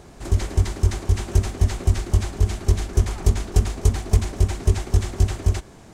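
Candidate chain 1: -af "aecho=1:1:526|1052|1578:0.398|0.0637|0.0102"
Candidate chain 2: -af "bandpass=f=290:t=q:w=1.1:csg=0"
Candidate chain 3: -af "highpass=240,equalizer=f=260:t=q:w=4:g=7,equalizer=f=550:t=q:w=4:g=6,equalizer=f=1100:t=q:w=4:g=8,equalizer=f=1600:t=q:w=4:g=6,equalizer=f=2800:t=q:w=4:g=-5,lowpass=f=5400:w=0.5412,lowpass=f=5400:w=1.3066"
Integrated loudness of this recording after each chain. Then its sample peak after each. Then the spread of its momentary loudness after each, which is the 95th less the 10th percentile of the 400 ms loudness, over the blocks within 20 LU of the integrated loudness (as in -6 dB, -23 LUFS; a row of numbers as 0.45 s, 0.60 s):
-22.5 LUFS, -33.0 LUFS, -31.5 LUFS; -3.5 dBFS, -15.0 dBFS, -12.5 dBFS; 4 LU, 3 LU, 3 LU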